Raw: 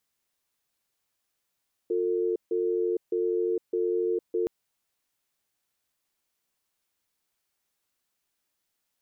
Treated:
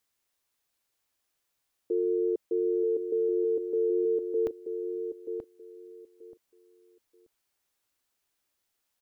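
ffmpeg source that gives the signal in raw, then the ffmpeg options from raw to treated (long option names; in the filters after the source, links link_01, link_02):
-f lavfi -i "aevalsrc='0.0473*(sin(2*PI*356*t)+sin(2*PI*449*t))*clip(min(mod(t,0.61),0.46-mod(t,0.61))/0.005,0,1)':duration=2.57:sample_rate=44100"
-filter_complex "[0:a]equalizer=frequency=180:width_type=o:width=0.63:gain=-6,asplit=2[link_01][link_02];[link_02]adelay=931,lowpass=frequency=830:poles=1,volume=-6dB,asplit=2[link_03][link_04];[link_04]adelay=931,lowpass=frequency=830:poles=1,volume=0.23,asplit=2[link_05][link_06];[link_06]adelay=931,lowpass=frequency=830:poles=1,volume=0.23[link_07];[link_03][link_05][link_07]amix=inputs=3:normalize=0[link_08];[link_01][link_08]amix=inputs=2:normalize=0"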